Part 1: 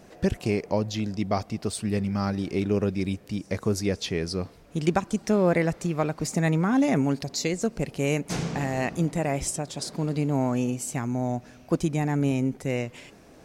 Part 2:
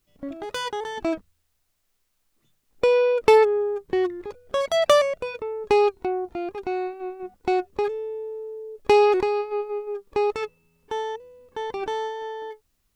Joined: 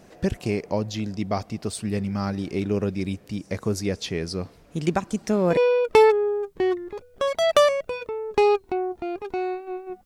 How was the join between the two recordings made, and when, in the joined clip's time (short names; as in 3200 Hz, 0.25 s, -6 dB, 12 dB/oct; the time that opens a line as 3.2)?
part 1
4.85 add part 2 from 2.18 s 0.72 s -10.5 dB
5.57 switch to part 2 from 2.9 s